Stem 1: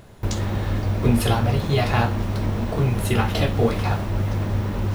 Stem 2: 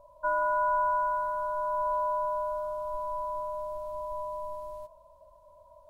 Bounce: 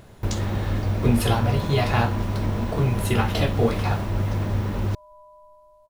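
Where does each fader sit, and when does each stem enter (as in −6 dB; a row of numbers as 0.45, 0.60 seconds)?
−1.0, −13.5 decibels; 0.00, 1.00 seconds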